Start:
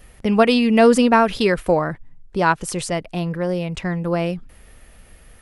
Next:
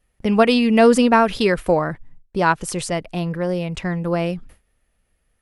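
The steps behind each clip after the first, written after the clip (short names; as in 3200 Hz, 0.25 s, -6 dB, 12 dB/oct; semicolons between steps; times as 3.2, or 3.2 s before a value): gate with hold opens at -34 dBFS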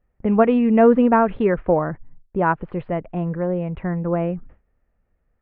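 Gaussian blur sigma 4.8 samples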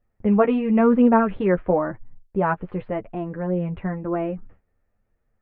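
flange 0.96 Hz, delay 8.4 ms, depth 2.9 ms, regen +16%; gain +1.5 dB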